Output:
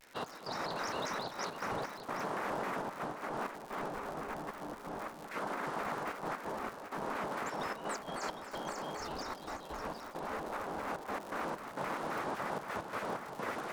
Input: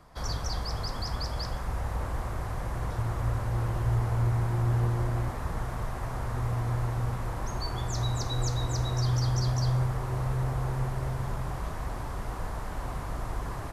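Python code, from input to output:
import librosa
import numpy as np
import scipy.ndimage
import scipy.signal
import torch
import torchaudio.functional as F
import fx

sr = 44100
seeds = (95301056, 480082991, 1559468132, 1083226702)

p1 = fx.spec_gate(x, sr, threshold_db=-15, keep='weak')
p2 = fx.lowpass(p1, sr, hz=2100.0, slope=6)
p3 = fx.low_shelf(p2, sr, hz=350.0, db=-5.0)
p4 = fx.over_compress(p3, sr, threshold_db=-43.0, ratio=-0.5)
p5 = fx.step_gate(p4, sr, bpm=130, pattern='xx..xxxxxxx.x.', floor_db=-12.0, edge_ms=4.5)
p6 = fx.dmg_crackle(p5, sr, seeds[0], per_s=150.0, level_db=-45.0)
p7 = p6 + fx.echo_single(p6, sr, ms=763, db=-9.5, dry=0)
p8 = fx.vibrato_shape(p7, sr, shape='square', rate_hz=3.8, depth_cents=250.0)
y = F.gain(torch.from_numpy(p8), 5.0).numpy()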